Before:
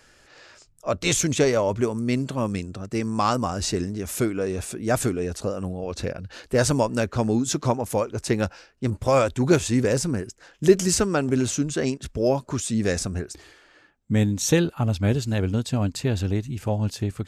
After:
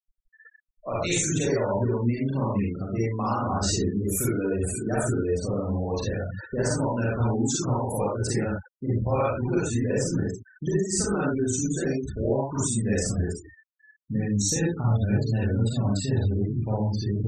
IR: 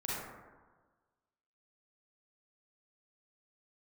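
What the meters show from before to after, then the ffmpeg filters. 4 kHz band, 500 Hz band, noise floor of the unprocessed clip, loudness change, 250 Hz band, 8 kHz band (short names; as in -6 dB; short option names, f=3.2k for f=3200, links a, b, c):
-4.5 dB, -4.0 dB, -56 dBFS, -2.0 dB, -2.0 dB, -1.0 dB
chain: -filter_complex "[0:a]aeval=exprs='0.708*(cos(1*acos(clip(val(0)/0.708,-1,1)))-cos(1*PI/2))+0.00794*(cos(3*acos(clip(val(0)/0.708,-1,1)))-cos(3*PI/2))+0.0178*(cos(5*acos(clip(val(0)/0.708,-1,1)))-cos(5*PI/2))+0.00562*(cos(8*acos(clip(val(0)/0.708,-1,1)))-cos(8*PI/2))':c=same,acompressor=threshold=-25dB:ratio=5[a];[1:a]atrim=start_sample=2205,atrim=end_sample=6174[b];[a][b]afir=irnorm=-1:irlink=0,afftfilt=real='re*gte(hypot(re,im),0.0251)':imag='im*gte(hypot(re,im),0.0251)':win_size=1024:overlap=0.75,crystalizer=i=1:c=0"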